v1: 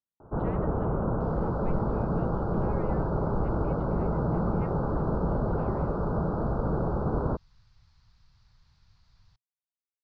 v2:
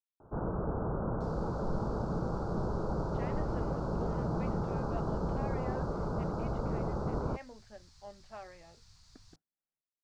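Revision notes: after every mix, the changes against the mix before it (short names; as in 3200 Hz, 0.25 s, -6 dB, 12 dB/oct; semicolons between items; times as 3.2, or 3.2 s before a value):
speech: entry +2.75 s; first sound -6.5 dB; master: remove air absorption 230 m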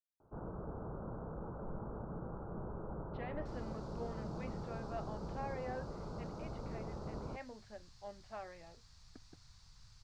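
first sound -10.5 dB; second sound: entry +2.25 s; master: add high shelf 5400 Hz -5 dB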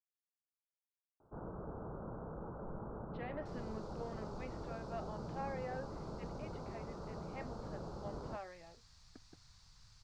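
first sound: entry +1.00 s; master: add low shelf 160 Hz -3.5 dB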